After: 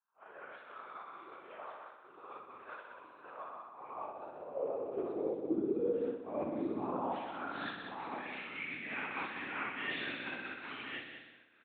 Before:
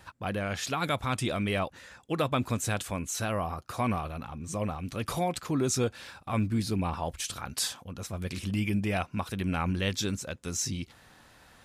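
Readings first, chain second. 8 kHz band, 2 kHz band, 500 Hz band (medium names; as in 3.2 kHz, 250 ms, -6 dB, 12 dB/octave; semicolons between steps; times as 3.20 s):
under -40 dB, -4.0 dB, -4.5 dB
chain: phase randomisation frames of 200 ms; band-pass sweep 330 Hz -> 1.9 kHz, 5.28–7.97 s; delay 1086 ms -10.5 dB; LPC vocoder at 8 kHz whisper; reverse; compression 6:1, threshold -44 dBFS, peak gain reduction 16 dB; reverse; expander -47 dBFS; bass shelf 340 Hz +4.5 dB; on a send: multi-head delay 62 ms, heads all three, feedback 41%, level -9 dB; on the sum: high-pass sweep 1.2 kHz -> 270 Hz, 3.61–5.69 s; random flutter of the level, depth 50%; trim +8.5 dB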